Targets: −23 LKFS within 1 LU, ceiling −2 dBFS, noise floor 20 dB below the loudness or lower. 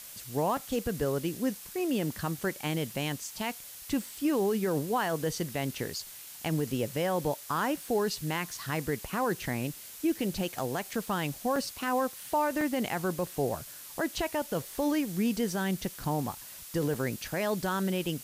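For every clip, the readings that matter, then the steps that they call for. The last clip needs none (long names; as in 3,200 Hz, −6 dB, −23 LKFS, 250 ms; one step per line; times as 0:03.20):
number of dropouts 4; longest dropout 2.6 ms; background noise floor −46 dBFS; target noise floor −52 dBFS; integrated loudness −31.5 LKFS; sample peak −19.0 dBFS; target loudness −23.0 LKFS
→ repair the gap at 0:00.57/0:11.56/0:12.61/0:16.94, 2.6 ms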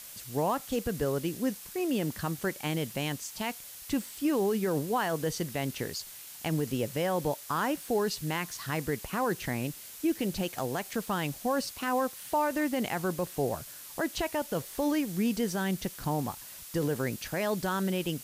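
number of dropouts 0; background noise floor −46 dBFS; target noise floor −52 dBFS
→ broadband denoise 6 dB, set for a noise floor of −46 dBFS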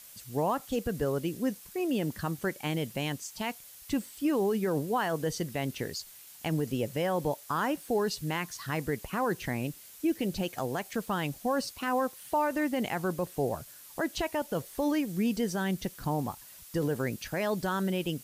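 background noise floor −51 dBFS; target noise floor −52 dBFS
→ broadband denoise 6 dB, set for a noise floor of −51 dBFS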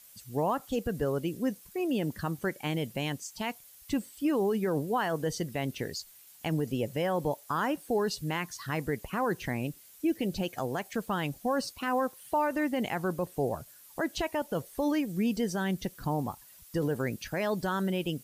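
background noise floor −55 dBFS; integrated loudness −32.0 LKFS; sample peak −19.5 dBFS; target loudness −23.0 LKFS
→ level +9 dB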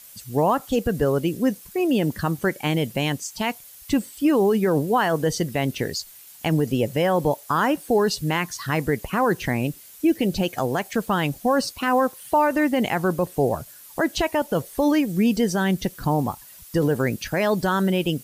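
integrated loudness −23.0 LKFS; sample peak −10.5 dBFS; background noise floor −46 dBFS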